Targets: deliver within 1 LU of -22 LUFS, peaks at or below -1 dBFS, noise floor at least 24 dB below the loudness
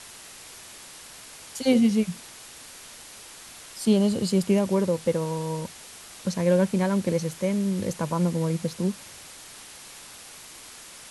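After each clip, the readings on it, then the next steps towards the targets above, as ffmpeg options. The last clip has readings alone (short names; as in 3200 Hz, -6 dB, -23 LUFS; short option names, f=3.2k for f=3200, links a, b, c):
noise floor -45 dBFS; noise floor target -49 dBFS; loudness -25.0 LUFS; peak -8.5 dBFS; loudness target -22.0 LUFS
-> -af "afftdn=nr=6:nf=-45"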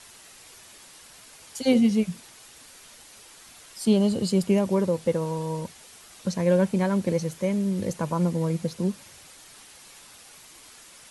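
noise floor -50 dBFS; loudness -25.0 LUFS; peak -8.5 dBFS; loudness target -22.0 LUFS
-> -af "volume=3dB"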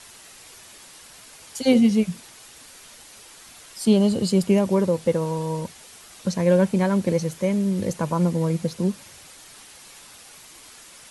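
loudness -22.0 LUFS; peak -5.5 dBFS; noise floor -47 dBFS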